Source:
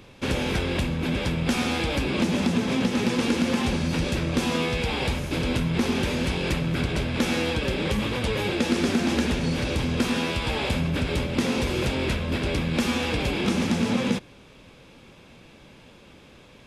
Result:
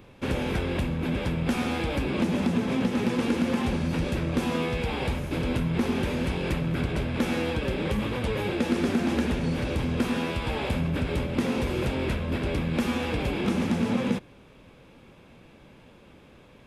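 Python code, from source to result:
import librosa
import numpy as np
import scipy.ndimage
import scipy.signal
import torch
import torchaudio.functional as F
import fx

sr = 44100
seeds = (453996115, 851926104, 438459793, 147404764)

y = fx.peak_eq(x, sr, hz=5500.0, db=-8.0, octaves=2.0)
y = y * 10.0 ** (-1.5 / 20.0)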